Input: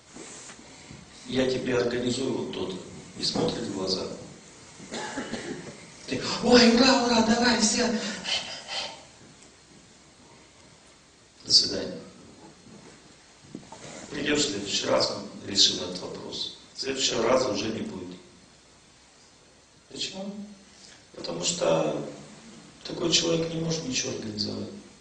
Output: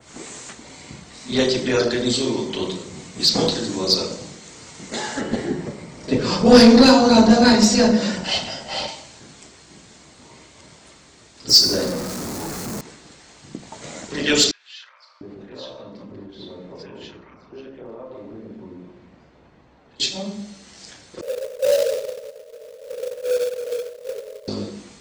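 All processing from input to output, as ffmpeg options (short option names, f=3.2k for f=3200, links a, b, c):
-filter_complex "[0:a]asettb=1/sr,asplit=3[a][b][c];[a]atrim=end=5.214[d];[b]atrim=start=5.21:end=8.88,asetpts=PTS-STARTPTS,afade=t=in:d=0.004:c=qsin,afade=t=out:st=3.666:d=0.004:c=qsin,tiltshelf=f=1.2k:g=6.5,bandreject=f=6.4k:w=24[e];[c]atrim=start=8.876[f];[d][e]acrossfade=d=0.004:c1=hsin:c2=qsin[g];[g][f]acrossfade=d=0.004:c1=qsin:c2=hsin,asettb=1/sr,asplit=3[h][i][j];[h]atrim=end=11.494[k];[i]atrim=start=11.49:end=12.81,asetpts=PTS-STARTPTS,afade=t=in:d=0.004:c=qsin,afade=t=out:st=1.316:d=0.004:c=qsin,aeval=exprs='val(0)+0.5*0.0316*sgn(val(0))':c=same,equalizer=f=3.2k:t=o:w=1.2:g=-10[l];[j]atrim=start=12.806[m];[k][l]acrossfade=d=0.004:c1=hsin:c2=qsin[n];[n][m]acrossfade=d=0.004:c1=qsin:c2=hsin,asettb=1/sr,asplit=3[o][p][q];[o]atrim=end=14.514[r];[p]atrim=start=14.51:end=20,asetpts=PTS-STARTPTS,afade=t=in:d=0.004:c=qsin,afade=t=out:st=5.486:d=0.004:c=qsin,lowpass=1.7k,acompressor=threshold=-41dB:ratio=6:attack=3.2:release=140:knee=1:detection=peak,acrossover=split=1300[s][t];[s]adelay=700[u];[u][t]amix=inputs=2:normalize=0,atrim=end_sample=242109[v];[q]atrim=start=19.996[w];[r][v]acrossfade=d=0.004:c1=hsin:c2=qsin[x];[x][w]acrossfade=d=0.004:c1=qsin:c2=hsin,asettb=1/sr,asplit=3[y][z][aa];[y]atrim=end=21.214[ab];[z]atrim=start=21.21:end=24.48,asetpts=PTS-STARTPTS,afade=t=in:d=0.004:c=qsin,afade=t=out:st=3.266:d=0.004:c=qsin,aeval=exprs='val(0)+0.5*0.0335*sgn(val(0))':c=same,asuperpass=centerf=520:order=20:qfactor=2.6,acrusher=bits=3:mode=log:mix=0:aa=0.000001[ac];[aa]atrim=start=24.476[ad];[ab][ac]acrossfade=d=0.004:c1=hsin:c2=qsin[ae];[ae][ad]acrossfade=d=0.004:c1=qsin:c2=hsin,adynamicequalizer=threshold=0.00891:dfrequency=4800:dqfactor=0.96:tfrequency=4800:tqfactor=0.96:attack=5:release=100:ratio=0.375:range=3.5:mode=boostabove:tftype=bell,acontrast=83,volume=-1dB"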